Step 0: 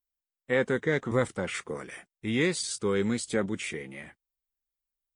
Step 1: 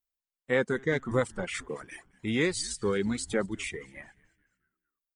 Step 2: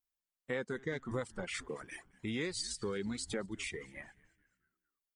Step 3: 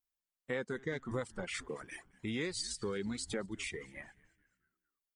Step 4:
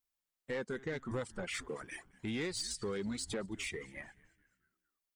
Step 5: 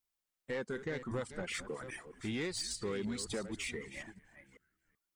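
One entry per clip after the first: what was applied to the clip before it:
frequency-shifting echo 217 ms, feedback 43%, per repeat -130 Hz, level -15 dB; reverb removal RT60 1.4 s
dynamic bell 4.6 kHz, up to +5 dB, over -54 dBFS, Q 2.1; compression 2.5:1, threshold -35 dBFS, peak gain reduction 10 dB; trim -2.5 dB
no audible change
saturation -31.5 dBFS, distortion -16 dB; trim +1.5 dB
chunks repeated in reverse 381 ms, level -11.5 dB

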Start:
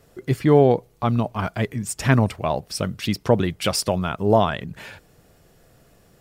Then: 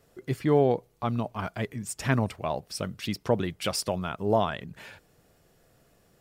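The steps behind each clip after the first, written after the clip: bass shelf 160 Hz -3.5 dB; trim -6.5 dB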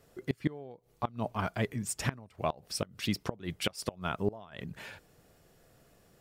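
inverted gate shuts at -16 dBFS, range -24 dB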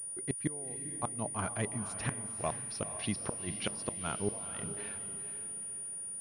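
echo that smears into a reverb 471 ms, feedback 42%, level -10 dB; class-D stage that switches slowly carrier 9.5 kHz; trim -3.5 dB

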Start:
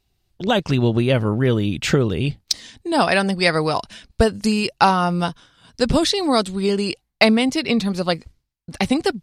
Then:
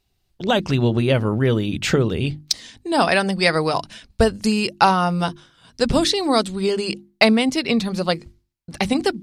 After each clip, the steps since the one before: hum notches 50/100/150/200/250/300/350 Hz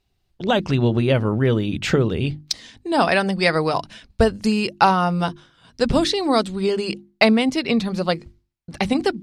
treble shelf 5.6 kHz -8 dB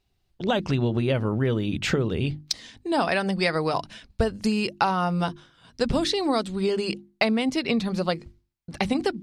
compression 3:1, threshold -18 dBFS, peak gain reduction 7 dB; trim -2 dB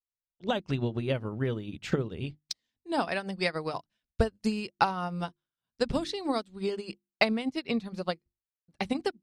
upward expansion 2.5:1, over -43 dBFS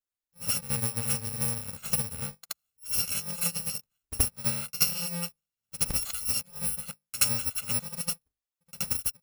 bit-reversed sample order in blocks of 128 samples; pre-echo 75 ms -14 dB

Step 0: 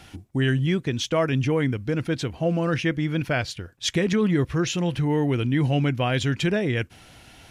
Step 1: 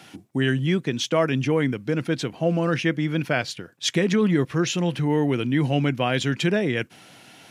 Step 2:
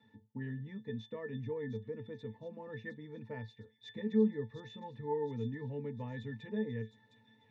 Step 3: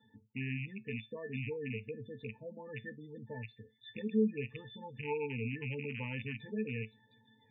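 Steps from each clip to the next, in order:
high-pass 140 Hz 24 dB/octave; trim +1.5 dB
pitch-class resonator A, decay 0.16 s; feedback echo behind a high-pass 711 ms, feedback 50%, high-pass 4.9 kHz, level -3.5 dB; trim -4.5 dB
rattle on loud lows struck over -42 dBFS, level -29 dBFS; spectral gate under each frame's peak -20 dB strong; feedback comb 130 Hz, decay 0.21 s, harmonics all, mix 40%; trim +2.5 dB

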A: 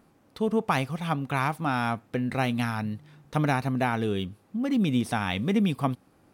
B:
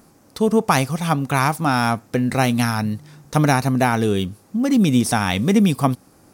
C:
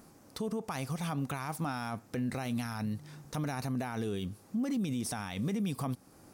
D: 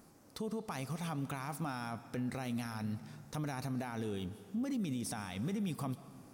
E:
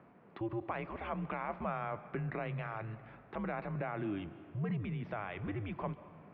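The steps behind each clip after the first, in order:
resonant high shelf 4.3 kHz +7.5 dB, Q 1.5; trim +8.5 dB
compression 1.5:1, threshold -30 dBFS, peak gain reduction 7 dB; peak limiter -21.5 dBFS, peak gain reduction 11.5 dB; trim -5 dB
algorithmic reverb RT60 2 s, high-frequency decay 0.75×, pre-delay 95 ms, DRR 14 dB; trim -4 dB
mistuned SSB -100 Hz 270–2700 Hz; endings held to a fixed fall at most 450 dB/s; trim +4.5 dB

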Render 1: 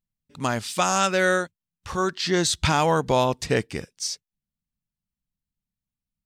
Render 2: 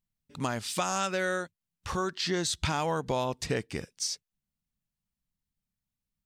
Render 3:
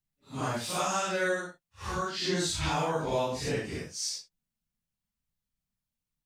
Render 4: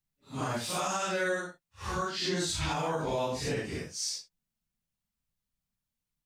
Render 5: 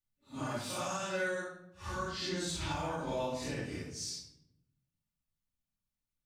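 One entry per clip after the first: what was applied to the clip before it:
compression 2.5:1, threshold -30 dBFS, peak gain reduction 10 dB
phase randomisation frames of 200 ms
peak limiter -22 dBFS, peak gain reduction 5 dB
reverberation RT60 0.85 s, pre-delay 3 ms, DRR 2 dB; trim -7.5 dB

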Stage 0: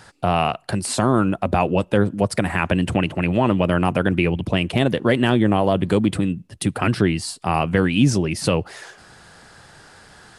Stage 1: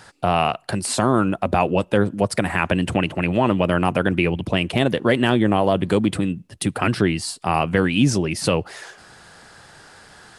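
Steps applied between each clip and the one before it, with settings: bass shelf 220 Hz -4 dB; trim +1 dB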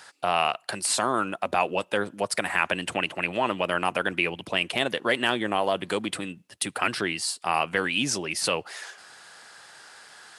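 high-pass 1.1 kHz 6 dB/octave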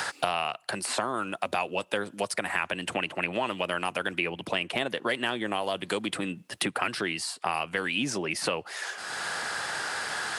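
three bands compressed up and down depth 100%; trim -4.5 dB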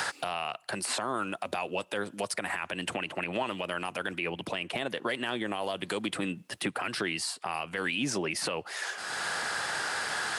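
peak limiter -20 dBFS, peak gain reduction 9.5 dB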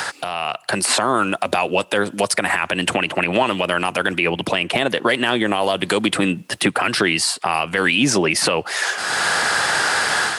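level rider gain up to 7.5 dB; trim +6.5 dB

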